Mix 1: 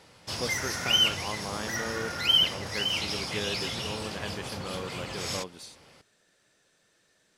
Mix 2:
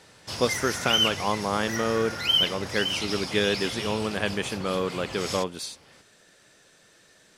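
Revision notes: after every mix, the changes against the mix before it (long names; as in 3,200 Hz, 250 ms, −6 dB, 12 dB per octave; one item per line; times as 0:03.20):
speech +10.5 dB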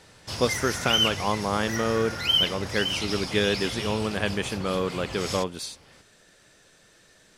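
master: add low-shelf EQ 70 Hz +11.5 dB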